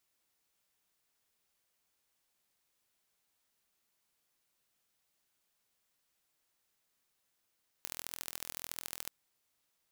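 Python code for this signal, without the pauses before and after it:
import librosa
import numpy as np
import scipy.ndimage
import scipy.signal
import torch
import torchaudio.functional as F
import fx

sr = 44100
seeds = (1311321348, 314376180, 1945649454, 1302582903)

y = fx.impulse_train(sr, length_s=1.24, per_s=41.6, accent_every=3, level_db=-11.0)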